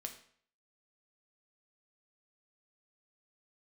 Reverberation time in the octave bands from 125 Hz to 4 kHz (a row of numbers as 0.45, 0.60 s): 0.55, 0.55, 0.55, 0.55, 0.55, 0.50 s